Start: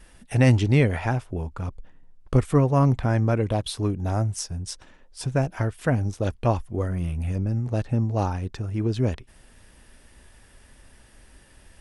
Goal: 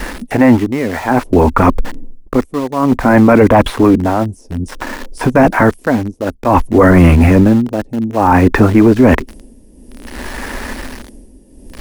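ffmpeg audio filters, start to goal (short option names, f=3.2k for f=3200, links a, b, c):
-filter_complex "[0:a]acrossover=split=2500[a][b];[b]acompressor=threshold=-44dB:ratio=4:attack=1:release=60[c];[a][c]amix=inputs=2:normalize=0,equalizer=f=125:t=o:w=1:g=-11,equalizer=f=250:t=o:w=1:g=11,equalizer=f=500:t=o:w=1:g=4,equalizer=f=1k:t=o:w=1:g=9,equalizer=f=2k:t=o:w=1:g=9,equalizer=f=4k:t=o:w=1:g=-9,equalizer=f=8k:t=o:w=1:g=-8,areverse,acompressor=threshold=-26dB:ratio=5,areverse,tremolo=f=0.57:d=0.85,acrossover=split=460|4800[d][e][f];[e]aeval=exprs='val(0)*gte(abs(val(0)),0.00237)':c=same[g];[d][g][f]amix=inputs=3:normalize=0,apsyclip=27.5dB,volume=-1.5dB"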